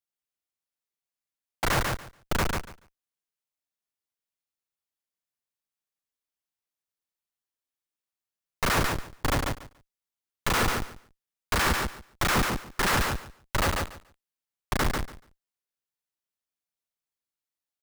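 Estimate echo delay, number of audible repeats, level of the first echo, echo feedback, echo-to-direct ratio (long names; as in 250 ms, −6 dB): 143 ms, 2, −4.0 dB, 16%, −4.0 dB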